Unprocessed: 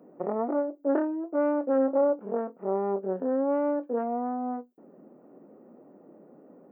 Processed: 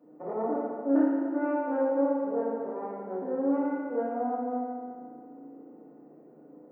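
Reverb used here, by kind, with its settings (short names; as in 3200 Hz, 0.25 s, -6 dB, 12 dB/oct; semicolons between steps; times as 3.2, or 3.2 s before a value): FDN reverb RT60 2.1 s, low-frequency decay 1.05×, high-frequency decay 0.9×, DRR -8.5 dB; gain -10.5 dB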